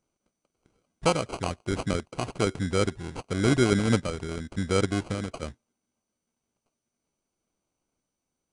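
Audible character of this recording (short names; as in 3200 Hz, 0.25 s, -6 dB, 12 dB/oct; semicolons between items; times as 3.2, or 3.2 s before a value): aliases and images of a low sample rate 1800 Hz, jitter 0%; random-step tremolo; MP2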